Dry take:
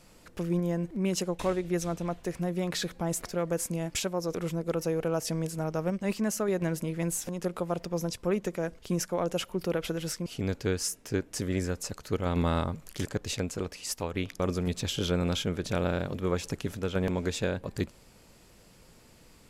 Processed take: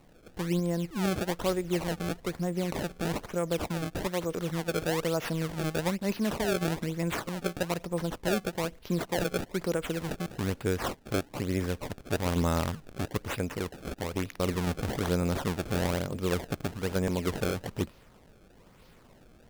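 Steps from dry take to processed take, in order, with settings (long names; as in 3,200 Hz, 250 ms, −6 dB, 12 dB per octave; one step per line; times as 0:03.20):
sample-and-hold swept by an LFO 26×, swing 160% 1.1 Hz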